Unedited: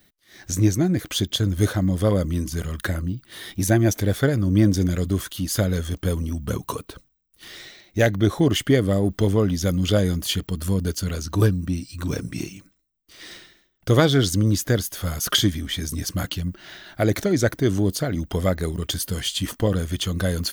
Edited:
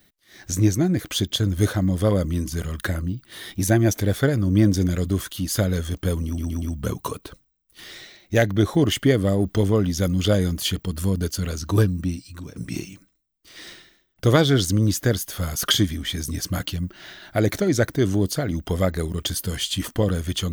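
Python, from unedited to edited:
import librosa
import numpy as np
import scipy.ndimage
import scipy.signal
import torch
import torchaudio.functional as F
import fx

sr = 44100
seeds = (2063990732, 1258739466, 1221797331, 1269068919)

y = fx.edit(x, sr, fx.stutter(start_s=6.26, slice_s=0.12, count=4),
    fx.fade_out_to(start_s=11.72, length_s=0.48, floor_db=-22.0), tone=tone)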